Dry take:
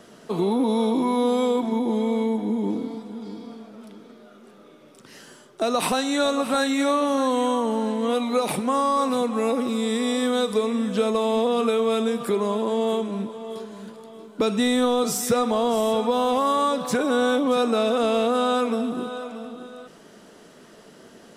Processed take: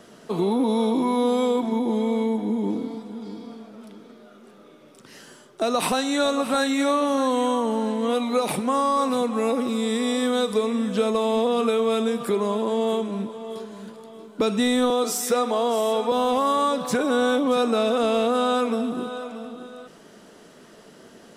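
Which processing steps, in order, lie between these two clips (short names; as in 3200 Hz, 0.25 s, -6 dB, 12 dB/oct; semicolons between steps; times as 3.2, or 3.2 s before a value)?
14.9–16.12 HPF 250 Hz 24 dB/oct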